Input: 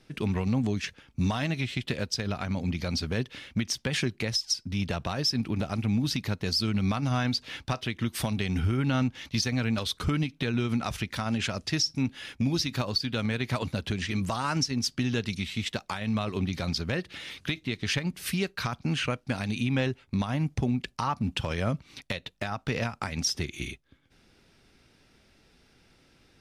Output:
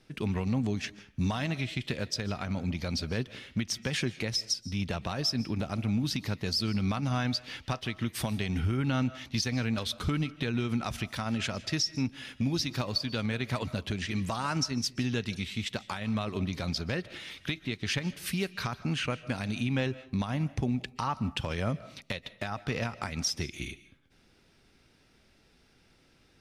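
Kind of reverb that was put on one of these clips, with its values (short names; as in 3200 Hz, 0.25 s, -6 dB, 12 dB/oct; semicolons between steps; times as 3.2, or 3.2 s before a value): digital reverb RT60 0.45 s, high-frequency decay 0.65×, pre-delay 0.11 s, DRR 17 dB; gain -2.5 dB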